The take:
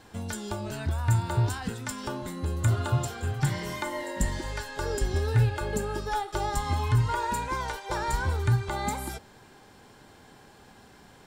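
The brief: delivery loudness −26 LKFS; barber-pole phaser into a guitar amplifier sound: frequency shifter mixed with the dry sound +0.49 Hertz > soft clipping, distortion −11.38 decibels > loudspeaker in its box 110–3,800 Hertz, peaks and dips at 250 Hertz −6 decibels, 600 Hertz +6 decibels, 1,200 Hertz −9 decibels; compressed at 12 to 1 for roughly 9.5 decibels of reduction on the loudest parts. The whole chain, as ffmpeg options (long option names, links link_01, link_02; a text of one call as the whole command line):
ffmpeg -i in.wav -filter_complex "[0:a]acompressor=threshold=-28dB:ratio=12,asplit=2[link_01][link_02];[link_02]afreqshift=0.49[link_03];[link_01][link_03]amix=inputs=2:normalize=1,asoftclip=threshold=-34dB,highpass=110,equalizer=frequency=250:width_type=q:width=4:gain=-6,equalizer=frequency=600:width_type=q:width=4:gain=6,equalizer=frequency=1200:width_type=q:width=4:gain=-9,lowpass=frequency=3800:width=0.5412,lowpass=frequency=3800:width=1.3066,volume=15.5dB" out.wav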